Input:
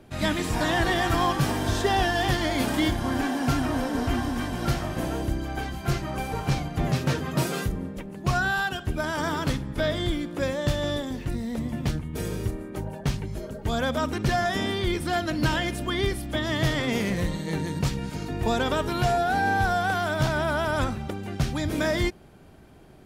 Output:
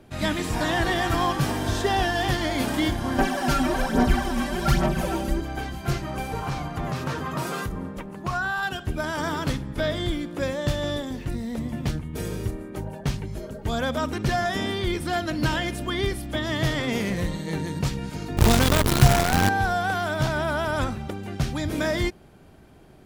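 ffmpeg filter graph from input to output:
-filter_complex "[0:a]asettb=1/sr,asplit=3[a][b][c];[a]atrim=end=3.184[d];[b]atrim=start=3.18:end=5.41,asetpts=PTS-STARTPTS,afade=t=in:d=0.004:c=qsin,afade=t=out:st=2.226:d=0.004:c=qsin,aecho=1:1:5.2:0.89,atrim=end_sample=98343,aphaser=in_gain=1:out_gain=1:delay=3.7:decay=0.56:speed=1.2:type=sinusoidal[e];[c]atrim=start=5.406[f];[d][e]acrossfade=d=0.004:c1=hsin:c2=qsin[g];[g][f]acrossfade=d=0.004:c1=qsin:c2=hsin,asettb=1/sr,asplit=3[h][i][j];[h]atrim=end=6.424[k];[i]atrim=start=6.42:end=8.63,asetpts=PTS-STARTPTS,afade=t=in:d=0.004:c=qsin,afade=t=out:st=2.206:d=0.004:c=qsin,equalizer=f=1.1k:w=1.5:g=9,acompressor=threshold=-26dB:ratio=2.5:attack=3.2:release=140:knee=1:detection=peak[l];[j]atrim=start=8.626[m];[k][l]acrossfade=d=0.004:c1=hsin:c2=qsin[n];[n][m]acrossfade=d=0.004:c1=qsin:c2=hsin,asettb=1/sr,asplit=3[o][p][q];[o]atrim=end=18.374[r];[p]atrim=start=18.37:end=19.49,asetpts=PTS-STARTPTS,afade=t=in:d=0.004:c=qsin,afade=t=out:st=1.116:d=0.004:c=qsin,bass=f=250:g=12,treble=f=4k:g=7,acrusher=bits=4:dc=4:mix=0:aa=0.000001[s];[q]atrim=start=19.486[t];[r][s]acrossfade=d=0.004:c1=hsin:c2=qsin[u];[u][t]acrossfade=d=0.004:c1=qsin:c2=hsin"

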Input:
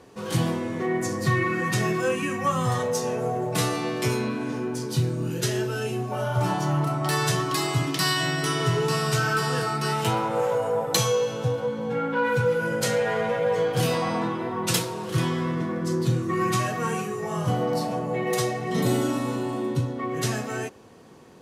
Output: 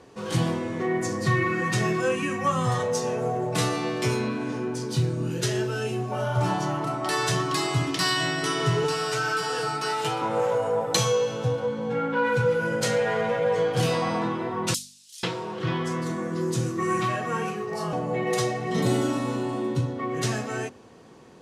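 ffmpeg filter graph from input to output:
-filter_complex "[0:a]asettb=1/sr,asplit=3[a][b][c];[a]atrim=end=8.844[d];[b]atrim=start=8.84:end=10.22,asetpts=PTS-STARTPTS,afade=t=in:d=0.004:c=qsin,afade=t=out:st=1.376:d=0.004:c=qsin,acrossover=split=310|2400[e][f][g];[e]acompressor=threshold=-41dB:ratio=4[h];[f]acompressor=threshold=-27dB:ratio=4[i];[g]acompressor=threshold=-33dB:ratio=4[j];[h][i][j]amix=inputs=3:normalize=0,aecho=1:1:6.7:0.6,atrim=end_sample=60858[k];[c]atrim=start=10.216[l];[d][k]acrossfade=d=0.004:c1=hsin:c2=qsin[m];[m][l]acrossfade=d=0.004:c1=qsin:c2=hsin,asettb=1/sr,asplit=3[n][o][p];[n]atrim=end=14.744[q];[o]atrim=start=14.74:end=17.93,asetpts=PTS-STARTPTS,afade=t=in:d=0.004:c=qsin,afade=t=out:st=3.186:d=0.004:c=qsin,lowshelf=f=100:g=-10.5,acrossover=split=4300[r][s];[r]adelay=490[t];[t][s]amix=inputs=2:normalize=0,atrim=end_sample=140679[u];[p]atrim=start=17.926[v];[q][u]acrossfade=d=0.004:c1=hsin:c2=qsin[w];[w][v]acrossfade=d=0.004:c1=qsin:c2=hsin,lowpass=9.3k,bandreject=f=48.87:t=h:w=4,bandreject=f=97.74:t=h:w=4,bandreject=f=146.61:t=h:w=4,bandreject=f=195.48:t=h:w=4,bandreject=f=244.35:t=h:w=4"

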